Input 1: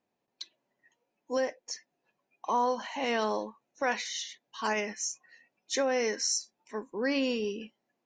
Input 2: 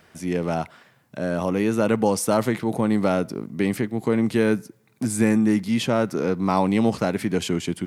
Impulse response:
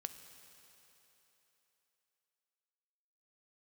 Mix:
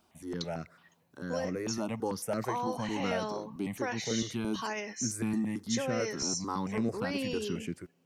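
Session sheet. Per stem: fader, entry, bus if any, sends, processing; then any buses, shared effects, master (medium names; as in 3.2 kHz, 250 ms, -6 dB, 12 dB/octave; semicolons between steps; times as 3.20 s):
+1.0 dB, 0.00 s, send -23.5 dB, treble shelf 6.4 kHz +8 dB; compression 2:1, threshold -40 dBFS, peak gain reduction 9.5 dB
-10.0 dB, 0.00 s, send -22 dB, stepped phaser 9 Hz 490–3200 Hz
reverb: on, RT60 3.6 s, pre-delay 3 ms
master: none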